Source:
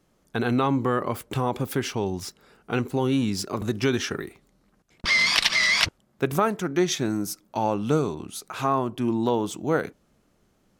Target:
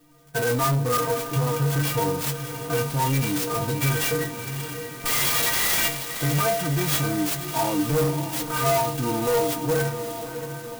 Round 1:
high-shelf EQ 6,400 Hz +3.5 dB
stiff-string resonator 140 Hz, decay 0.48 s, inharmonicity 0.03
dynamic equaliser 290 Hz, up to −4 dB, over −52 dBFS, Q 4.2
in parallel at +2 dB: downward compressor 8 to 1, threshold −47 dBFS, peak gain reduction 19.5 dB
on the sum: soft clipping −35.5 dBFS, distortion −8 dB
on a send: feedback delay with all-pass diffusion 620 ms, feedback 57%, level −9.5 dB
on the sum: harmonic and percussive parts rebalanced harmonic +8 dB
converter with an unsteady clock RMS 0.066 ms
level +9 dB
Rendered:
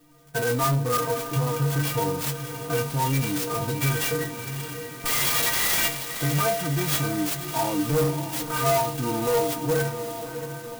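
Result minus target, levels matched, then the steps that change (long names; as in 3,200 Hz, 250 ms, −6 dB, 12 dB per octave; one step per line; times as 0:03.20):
downward compressor: peak gain reduction +8.5 dB
change: downward compressor 8 to 1, threshold −37.5 dBFS, peak gain reduction 11 dB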